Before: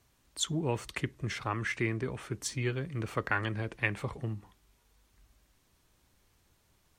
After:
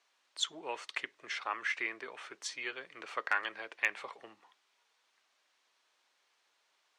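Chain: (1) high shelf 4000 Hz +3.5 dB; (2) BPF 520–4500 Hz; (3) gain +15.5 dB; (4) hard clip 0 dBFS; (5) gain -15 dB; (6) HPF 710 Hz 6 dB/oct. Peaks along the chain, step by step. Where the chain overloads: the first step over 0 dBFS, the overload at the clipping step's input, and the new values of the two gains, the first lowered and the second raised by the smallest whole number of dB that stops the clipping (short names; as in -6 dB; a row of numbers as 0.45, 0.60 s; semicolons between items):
-11.5, -11.5, +4.0, 0.0, -15.0, -13.5 dBFS; step 3, 4.0 dB; step 3 +11.5 dB, step 5 -11 dB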